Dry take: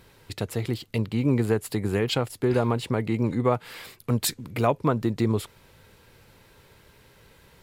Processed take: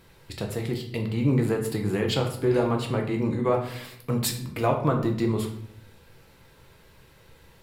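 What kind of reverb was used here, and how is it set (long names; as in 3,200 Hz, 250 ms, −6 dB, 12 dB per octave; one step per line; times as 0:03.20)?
rectangular room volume 130 cubic metres, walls mixed, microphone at 0.69 metres
level −2.5 dB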